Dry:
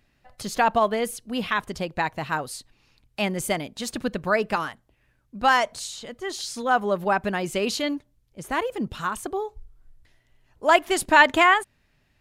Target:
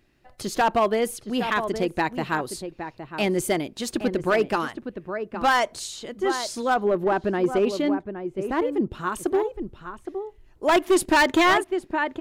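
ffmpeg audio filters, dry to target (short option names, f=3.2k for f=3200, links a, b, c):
-filter_complex "[0:a]equalizer=f=350:w=3:g=11,asplit=2[a][b];[b]adelay=816.3,volume=-9dB,highshelf=f=4k:g=-18.4[c];[a][c]amix=inputs=2:normalize=0,asoftclip=type=hard:threshold=-14dB,asettb=1/sr,asplit=3[d][e][f];[d]atrim=end=6.744[g];[e]atrim=start=6.74:end=9.07,asetpts=PTS-STARTPTS,afade=t=in:d=0.004:c=qsin,afade=t=out:st=2.326:d=0.004:c=qsin,highshelf=f=2.4k:g=-11.5[h];[f]atrim=start=9.066[i];[g][h]acrossfade=d=0.004:c1=hsin:c2=qsin[j];[j][i]acrossfade=d=0.004:c1=qsin:c2=hsin"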